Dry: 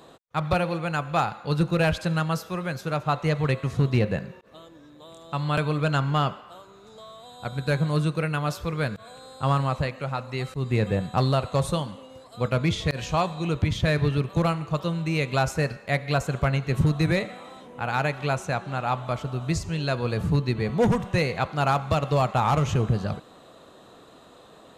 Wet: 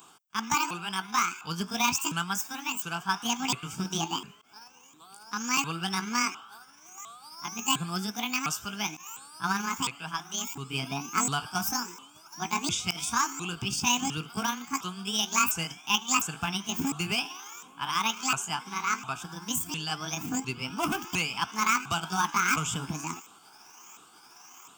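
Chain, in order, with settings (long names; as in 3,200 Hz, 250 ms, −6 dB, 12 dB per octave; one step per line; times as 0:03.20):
pitch shifter swept by a sawtooth +11 semitones, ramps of 705 ms
RIAA equalisation recording
phaser with its sweep stopped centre 2,800 Hz, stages 8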